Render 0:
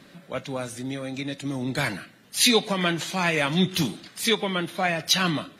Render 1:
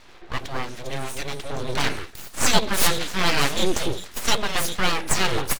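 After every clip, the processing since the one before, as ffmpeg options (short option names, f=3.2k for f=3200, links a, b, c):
-filter_complex "[0:a]acrossover=split=260|4900[a][b][c];[a]adelay=70[d];[c]adelay=400[e];[d][b][e]amix=inputs=3:normalize=0,aeval=exprs='abs(val(0))':c=same,volume=6dB"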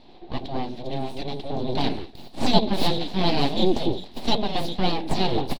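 -af "firequalizer=gain_entry='entry(110,0);entry(230,9);entry(500,0);entry(750,6);entry(1300,-15);entry(4000,2);entry(6300,-19)':delay=0.05:min_phase=1,volume=-1dB"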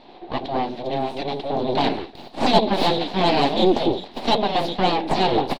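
-filter_complex "[0:a]asplit=2[a][b];[b]highpass=f=720:p=1,volume=17dB,asoftclip=type=tanh:threshold=-1.5dB[c];[a][c]amix=inputs=2:normalize=0,lowpass=f=1.5k:p=1,volume=-6dB"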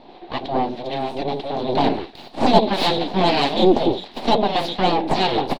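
-filter_complex "[0:a]acrossover=split=1100[a][b];[a]aeval=exprs='val(0)*(1-0.5/2+0.5/2*cos(2*PI*1.6*n/s))':c=same[c];[b]aeval=exprs='val(0)*(1-0.5/2-0.5/2*cos(2*PI*1.6*n/s))':c=same[d];[c][d]amix=inputs=2:normalize=0,volume=3.5dB"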